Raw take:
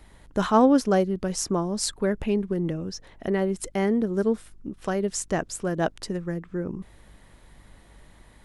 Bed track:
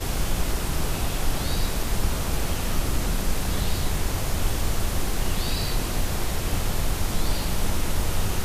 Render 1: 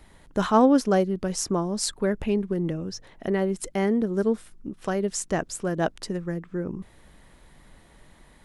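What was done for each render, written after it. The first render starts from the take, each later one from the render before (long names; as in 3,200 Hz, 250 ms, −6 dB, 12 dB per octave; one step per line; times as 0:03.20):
hum removal 50 Hz, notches 2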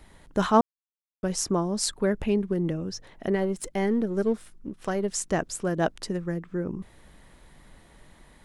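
0:00.61–0:01.23: silence
0:03.35–0:05.14: gain on one half-wave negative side −3 dB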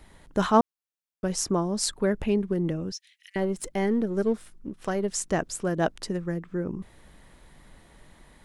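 0:02.92–0:03.36: Butterworth high-pass 2,200 Hz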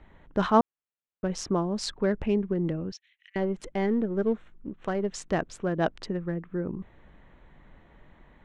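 adaptive Wiener filter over 9 samples
Chebyshev low-pass filter 4,100 Hz, order 2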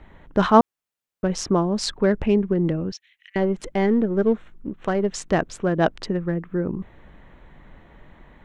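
level +6.5 dB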